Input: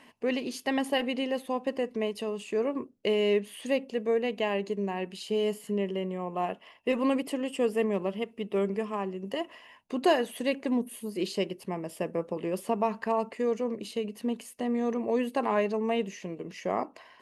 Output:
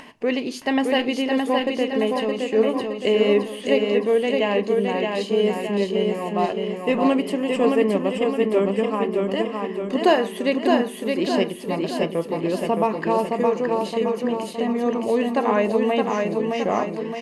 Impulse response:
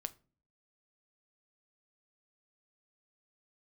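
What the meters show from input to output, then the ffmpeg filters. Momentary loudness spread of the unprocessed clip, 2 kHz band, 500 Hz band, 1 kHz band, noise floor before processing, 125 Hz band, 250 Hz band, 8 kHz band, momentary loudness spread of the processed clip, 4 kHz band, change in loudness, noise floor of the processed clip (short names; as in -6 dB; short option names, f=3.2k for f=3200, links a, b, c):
8 LU, +8.5 dB, +9.0 dB, +8.5 dB, -56 dBFS, +8.0 dB, +8.5 dB, n/a, 5 LU, +8.0 dB, +8.5 dB, -34 dBFS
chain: -filter_complex "[0:a]highshelf=f=10k:g=-12,acompressor=mode=upward:threshold=-44dB:ratio=2.5,aecho=1:1:617|1234|1851|2468|3085|3702|4319:0.668|0.348|0.181|0.094|0.0489|0.0254|0.0132,asplit=2[a][b];[1:a]atrim=start_sample=2205[c];[b][c]afir=irnorm=-1:irlink=0,volume=11.5dB[d];[a][d]amix=inputs=2:normalize=0,volume=-5dB"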